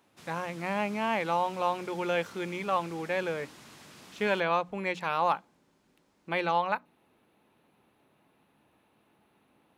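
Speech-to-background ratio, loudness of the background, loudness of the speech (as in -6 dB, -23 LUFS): 19.5 dB, -50.5 LUFS, -31.0 LUFS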